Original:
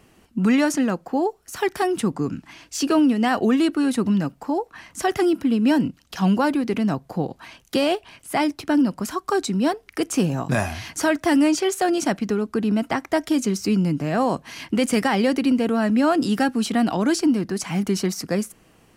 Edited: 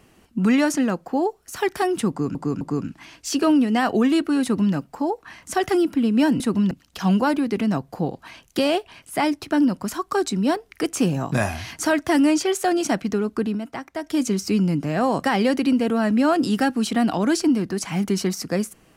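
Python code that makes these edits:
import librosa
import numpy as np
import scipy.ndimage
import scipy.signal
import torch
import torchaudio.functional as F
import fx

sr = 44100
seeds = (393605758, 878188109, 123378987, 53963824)

y = fx.edit(x, sr, fx.repeat(start_s=2.09, length_s=0.26, count=3),
    fx.duplicate(start_s=3.91, length_s=0.31, to_s=5.88),
    fx.fade_down_up(start_s=12.59, length_s=0.78, db=-8.5, fade_s=0.18),
    fx.cut(start_s=14.41, length_s=0.62), tone=tone)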